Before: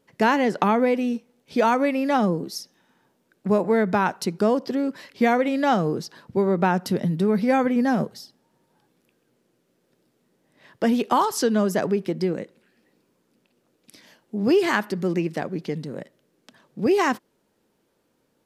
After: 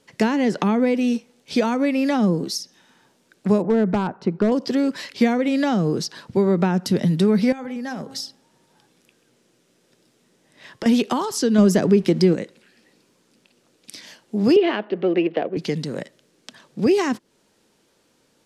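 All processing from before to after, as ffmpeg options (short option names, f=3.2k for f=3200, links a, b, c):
-filter_complex "[0:a]asettb=1/sr,asplit=3[a][b][c];[a]atrim=end=3.624[d];[b]atrim=start=3.62:end=4.52,asetpts=PTS-STARTPTS,afade=t=in:d=0.004:c=qsin,afade=t=out:st=0.896:d=0.004:c=qsin,lowpass=1.2k,volume=13.5dB,asoftclip=hard,volume=-13.5dB[e];[c]atrim=start=4.516[f];[d][e]acrossfade=d=0.004:c1=hsin:c2=qsin[g];[g][f]acrossfade=d=0.004:c1=qsin:c2=hsin,asettb=1/sr,asplit=3[h][i][j];[h]atrim=end=7.524[k];[i]atrim=start=7.52:end=10.86,asetpts=PTS-STARTPTS,afade=t=in:d=0.004:c=qsin,afade=t=out:st=3.336:d=0.004:c=qsin,bandreject=f=4.4k:w=24,bandreject=f=268.8:t=h:w=4,bandreject=f=537.6:t=h:w=4,bandreject=f=806.4:t=h:w=4,bandreject=f=1.0752k:t=h:w=4,bandreject=f=1.344k:t=h:w=4,acompressor=threshold=-31dB:ratio=10:attack=3.2:release=140:knee=1:detection=peak[l];[j]atrim=start=10.856[m];[k][l]acrossfade=d=0.004:c1=hsin:c2=qsin[n];[n][m]acrossfade=d=0.004:c1=qsin:c2=hsin,asettb=1/sr,asplit=3[o][p][q];[o]atrim=end=11.584[r];[p]atrim=start=11.58:end=12.35,asetpts=PTS-STARTPTS,afade=t=in:d=0.004:c=qsin,afade=t=out:st=0.766:d=0.004:c=qsin,bandreject=f=50:t=h:w=6,bandreject=f=100:t=h:w=6,bandreject=f=150:t=h:w=6,acontrast=35,aeval=exprs='sgn(val(0))*max(abs(val(0))-0.00266,0)':c=same[s];[q]atrim=start=12.346[t];[r][s]acrossfade=d=0.004:c1=hsin:c2=qsin[u];[u][t]acrossfade=d=0.004:c1=qsin:c2=hsin,asettb=1/sr,asplit=3[v][w][x];[v]atrim=end=14.564[y];[w]atrim=start=14.56:end=15.57,asetpts=PTS-STARTPTS,afade=t=in:d=0.004:c=qsin,afade=t=out:st=1.006:d=0.004:c=qsin,adynamicsmooth=sensitivity=5:basefreq=1.6k,highpass=320,equalizer=f=330:t=q:w=4:g=4,equalizer=f=480:t=q:w=4:g=9,equalizer=f=680:t=q:w=4:g=10,equalizer=f=2.9k:t=q:w=4:g=8,lowpass=f=3.6k:w=0.5412,lowpass=f=3.6k:w=1.3066[z];[x]atrim=start=15.566[aa];[y][z]acrossfade=d=0.004:c1=hsin:c2=qsin[ab];[ab][aa]acrossfade=d=0.004:c1=qsin:c2=hsin,lowpass=8.5k,highshelf=f=2.4k:g=10.5,acrossover=split=400[ac][ad];[ad]acompressor=threshold=-30dB:ratio=5[ae];[ac][ae]amix=inputs=2:normalize=0,volume=4.5dB"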